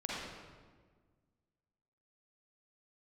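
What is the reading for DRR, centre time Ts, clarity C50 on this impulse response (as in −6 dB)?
−6.5 dB, 113 ms, −4.5 dB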